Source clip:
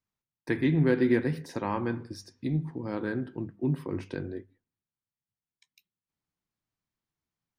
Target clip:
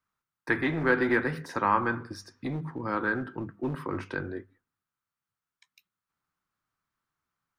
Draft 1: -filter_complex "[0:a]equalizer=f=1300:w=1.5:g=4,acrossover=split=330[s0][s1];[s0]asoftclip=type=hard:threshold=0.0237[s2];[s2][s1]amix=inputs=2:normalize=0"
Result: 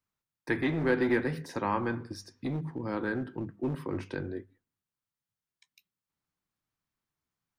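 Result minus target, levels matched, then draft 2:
1 kHz band -4.0 dB
-filter_complex "[0:a]equalizer=f=1300:w=1.5:g=15,acrossover=split=330[s0][s1];[s0]asoftclip=type=hard:threshold=0.0237[s2];[s2][s1]amix=inputs=2:normalize=0"

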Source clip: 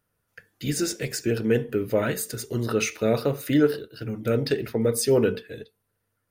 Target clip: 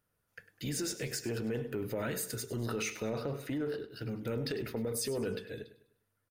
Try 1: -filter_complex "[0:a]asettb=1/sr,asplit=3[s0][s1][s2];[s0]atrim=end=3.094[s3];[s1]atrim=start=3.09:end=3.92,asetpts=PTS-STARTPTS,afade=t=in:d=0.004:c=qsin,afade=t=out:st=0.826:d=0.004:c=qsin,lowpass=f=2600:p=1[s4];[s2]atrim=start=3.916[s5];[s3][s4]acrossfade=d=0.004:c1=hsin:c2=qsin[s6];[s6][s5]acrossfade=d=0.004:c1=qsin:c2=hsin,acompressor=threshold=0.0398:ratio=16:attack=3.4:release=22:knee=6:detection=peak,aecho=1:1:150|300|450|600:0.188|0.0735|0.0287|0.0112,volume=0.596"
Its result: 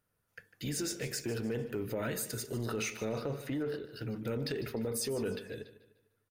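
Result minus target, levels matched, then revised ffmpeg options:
echo 49 ms late
-filter_complex "[0:a]asettb=1/sr,asplit=3[s0][s1][s2];[s0]atrim=end=3.094[s3];[s1]atrim=start=3.09:end=3.92,asetpts=PTS-STARTPTS,afade=t=in:d=0.004:c=qsin,afade=t=out:st=0.826:d=0.004:c=qsin,lowpass=f=2600:p=1[s4];[s2]atrim=start=3.916[s5];[s3][s4]acrossfade=d=0.004:c1=hsin:c2=qsin[s6];[s6][s5]acrossfade=d=0.004:c1=qsin:c2=hsin,acompressor=threshold=0.0398:ratio=16:attack=3.4:release=22:knee=6:detection=peak,aecho=1:1:101|202|303|404:0.188|0.0735|0.0287|0.0112,volume=0.596"

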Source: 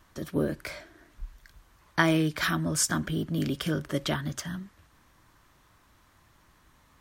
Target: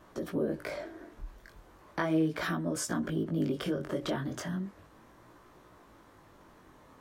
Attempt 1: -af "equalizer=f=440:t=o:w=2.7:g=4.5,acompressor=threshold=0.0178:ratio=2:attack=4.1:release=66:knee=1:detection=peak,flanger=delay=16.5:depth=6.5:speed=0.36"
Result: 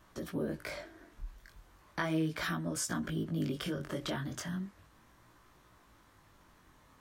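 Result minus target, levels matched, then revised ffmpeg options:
500 Hz band -2.5 dB
-af "equalizer=f=440:t=o:w=2.7:g=15,acompressor=threshold=0.0178:ratio=2:attack=4.1:release=66:knee=1:detection=peak,flanger=delay=16.5:depth=6.5:speed=0.36"

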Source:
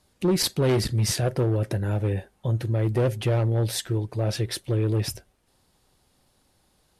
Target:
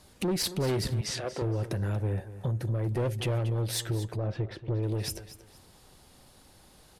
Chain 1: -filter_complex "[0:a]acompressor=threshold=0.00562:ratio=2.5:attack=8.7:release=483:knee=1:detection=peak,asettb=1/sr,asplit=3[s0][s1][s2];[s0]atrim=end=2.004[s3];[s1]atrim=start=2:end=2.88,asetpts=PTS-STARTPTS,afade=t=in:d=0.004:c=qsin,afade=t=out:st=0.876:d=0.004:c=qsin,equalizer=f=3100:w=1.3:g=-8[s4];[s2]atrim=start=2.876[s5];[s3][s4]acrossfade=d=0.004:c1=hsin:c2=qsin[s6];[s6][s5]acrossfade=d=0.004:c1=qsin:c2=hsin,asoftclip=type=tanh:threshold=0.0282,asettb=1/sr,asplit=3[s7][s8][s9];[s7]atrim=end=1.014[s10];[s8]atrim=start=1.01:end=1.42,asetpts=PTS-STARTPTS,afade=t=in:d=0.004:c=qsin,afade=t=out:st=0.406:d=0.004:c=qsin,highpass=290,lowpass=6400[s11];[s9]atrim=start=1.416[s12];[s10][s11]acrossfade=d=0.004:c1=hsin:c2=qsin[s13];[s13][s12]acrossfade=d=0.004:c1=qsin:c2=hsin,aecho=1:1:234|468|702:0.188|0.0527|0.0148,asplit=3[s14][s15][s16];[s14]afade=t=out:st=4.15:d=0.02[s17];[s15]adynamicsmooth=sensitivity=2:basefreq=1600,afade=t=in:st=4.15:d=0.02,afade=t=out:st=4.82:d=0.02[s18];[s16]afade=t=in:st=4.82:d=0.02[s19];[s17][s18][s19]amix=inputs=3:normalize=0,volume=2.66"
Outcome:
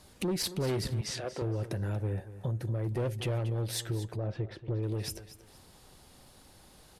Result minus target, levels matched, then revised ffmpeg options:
compression: peak gain reduction +4 dB
-filter_complex "[0:a]acompressor=threshold=0.0119:ratio=2.5:attack=8.7:release=483:knee=1:detection=peak,asettb=1/sr,asplit=3[s0][s1][s2];[s0]atrim=end=2.004[s3];[s1]atrim=start=2:end=2.88,asetpts=PTS-STARTPTS,afade=t=in:d=0.004:c=qsin,afade=t=out:st=0.876:d=0.004:c=qsin,equalizer=f=3100:w=1.3:g=-8[s4];[s2]atrim=start=2.876[s5];[s3][s4]acrossfade=d=0.004:c1=hsin:c2=qsin[s6];[s6][s5]acrossfade=d=0.004:c1=qsin:c2=hsin,asoftclip=type=tanh:threshold=0.0282,asettb=1/sr,asplit=3[s7][s8][s9];[s7]atrim=end=1.014[s10];[s8]atrim=start=1.01:end=1.42,asetpts=PTS-STARTPTS,afade=t=in:d=0.004:c=qsin,afade=t=out:st=0.406:d=0.004:c=qsin,highpass=290,lowpass=6400[s11];[s9]atrim=start=1.416[s12];[s10][s11]acrossfade=d=0.004:c1=hsin:c2=qsin[s13];[s13][s12]acrossfade=d=0.004:c1=qsin:c2=hsin,aecho=1:1:234|468|702:0.188|0.0527|0.0148,asplit=3[s14][s15][s16];[s14]afade=t=out:st=4.15:d=0.02[s17];[s15]adynamicsmooth=sensitivity=2:basefreq=1600,afade=t=in:st=4.15:d=0.02,afade=t=out:st=4.82:d=0.02[s18];[s16]afade=t=in:st=4.82:d=0.02[s19];[s17][s18][s19]amix=inputs=3:normalize=0,volume=2.66"

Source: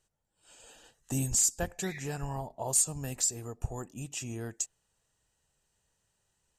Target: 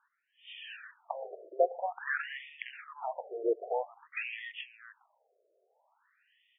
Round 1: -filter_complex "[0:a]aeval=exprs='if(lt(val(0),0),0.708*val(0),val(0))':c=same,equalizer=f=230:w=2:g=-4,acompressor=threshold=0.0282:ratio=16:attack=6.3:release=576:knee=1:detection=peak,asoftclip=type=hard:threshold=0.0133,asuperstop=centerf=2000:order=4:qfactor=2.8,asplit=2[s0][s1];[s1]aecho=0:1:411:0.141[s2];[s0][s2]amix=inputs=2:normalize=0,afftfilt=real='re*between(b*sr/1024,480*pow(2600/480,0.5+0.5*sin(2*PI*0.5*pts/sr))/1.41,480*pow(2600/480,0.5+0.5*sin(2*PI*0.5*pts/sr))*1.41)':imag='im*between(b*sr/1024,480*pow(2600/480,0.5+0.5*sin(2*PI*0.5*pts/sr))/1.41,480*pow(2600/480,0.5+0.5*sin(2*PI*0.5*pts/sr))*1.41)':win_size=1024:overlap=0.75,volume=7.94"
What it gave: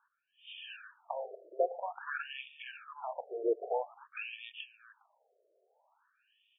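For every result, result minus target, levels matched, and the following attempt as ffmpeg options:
hard clipper: distortion +10 dB; 2 kHz band -2.5 dB
-filter_complex "[0:a]aeval=exprs='if(lt(val(0),0),0.708*val(0),val(0))':c=same,equalizer=f=230:w=2:g=-4,acompressor=threshold=0.0282:ratio=16:attack=6.3:release=576:knee=1:detection=peak,asoftclip=type=hard:threshold=0.0316,asuperstop=centerf=2000:order=4:qfactor=2.8,asplit=2[s0][s1];[s1]aecho=0:1:411:0.141[s2];[s0][s2]amix=inputs=2:normalize=0,afftfilt=real='re*between(b*sr/1024,480*pow(2600/480,0.5+0.5*sin(2*PI*0.5*pts/sr))/1.41,480*pow(2600/480,0.5+0.5*sin(2*PI*0.5*pts/sr))*1.41)':imag='im*between(b*sr/1024,480*pow(2600/480,0.5+0.5*sin(2*PI*0.5*pts/sr))/1.41,480*pow(2600/480,0.5+0.5*sin(2*PI*0.5*pts/sr))*1.41)':win_size=1024:overlap=0.75,volume=7.94"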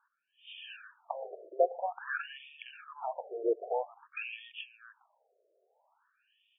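2 kHz band -3.0 dB
-filter_complex "[0:a]aeval=exprs='if(lt(val(0),0),0.708*val(0),val(0))':c=same,equalizer=f=230:w=2:g=-4,acompressor=threshold=0.0282:ratio=16:attack=6.3:release=576:knee=1:detection=peak,asoftclip=type=hard:threshold=0.0316,asuperstop=centerf=5900:order=4:qfactor=2.8,asplit=2[s0][s1];[s1]aecho=0:1:411:0.141[s2];[s0][s2]amix=inputs=2:normalize=0,afftfilt=real='re*between(b*sr/1024,480*pow(2600/480,0.5+0.5*sin(2*PI*0.5*pts/sr))/1.41,480*pow(2600/480,0.5+0.5*sin(2*PI*0.5*pts/sr))*1.41)':imag='im*between(b*sr/1024,480*pow(2600/480,0.5+0.5*sin(2*PI*0.5*pts/sr))/1.41,480*pow(2600/480,0.5+0.5*sin(2*PI*0.5*pts/sr))*1.41)':win_size=1024:overlap=0.75,volume=7.94"

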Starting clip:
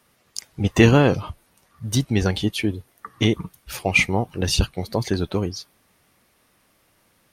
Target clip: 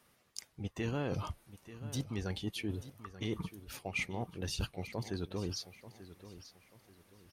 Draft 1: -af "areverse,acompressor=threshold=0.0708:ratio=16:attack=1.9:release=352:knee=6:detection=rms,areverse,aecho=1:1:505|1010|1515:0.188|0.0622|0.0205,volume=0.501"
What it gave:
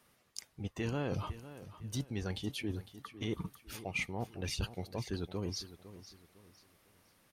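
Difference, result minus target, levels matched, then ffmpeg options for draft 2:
echo 381 ms early
-af "areverse,acompressor=threshold=0.0708:ratio=16:attack=1.9:release=352:knee=6:detection=rms,areverse,aecho=1:1:886|1772|2658:0.188|0.0622|0.0205,volume=0.501"

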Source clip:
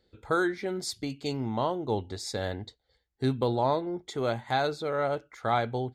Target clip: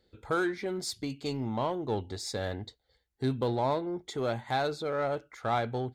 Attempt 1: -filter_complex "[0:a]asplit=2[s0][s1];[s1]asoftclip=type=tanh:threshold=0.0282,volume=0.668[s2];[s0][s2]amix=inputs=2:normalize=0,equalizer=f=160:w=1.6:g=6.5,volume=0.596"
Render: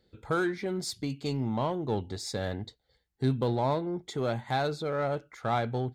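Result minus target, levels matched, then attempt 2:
125 Hz band +3.0 dB
-filter_complex "[0:a]asplit=2[s0][s1];[s1]asoftclip=type=tanh:threshold=0.0282,volume=0.668[s2];[s0][s2]amix=inputs=2:normalize=0,volume=0.596"

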